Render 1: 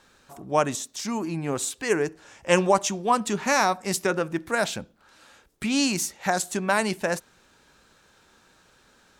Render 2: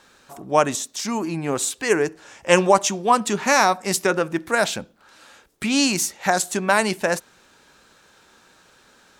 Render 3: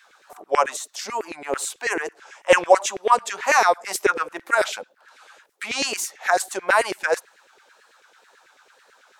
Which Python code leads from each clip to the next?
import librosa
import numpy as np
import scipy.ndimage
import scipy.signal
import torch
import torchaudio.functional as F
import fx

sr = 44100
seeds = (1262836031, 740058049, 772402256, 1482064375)

y1 = fx.low_shelf(x, sr, hz=140.0, db=-7.5)
y1 = y1 * librosa.db_to_amplitude(5.0)
y2 = fx.wow_flutter(y1, sr, seeds[0], rate_hz=2.1, depth_cents=94.0)
y2 = fx.filter_lfo_highpass(y2, sr, shape='saw_down', hz=9.1, low_hz=380.0, high_hz=2200.0, q=3.4)
y2 = y2 * librosa.db_to_amplitude(-4.5)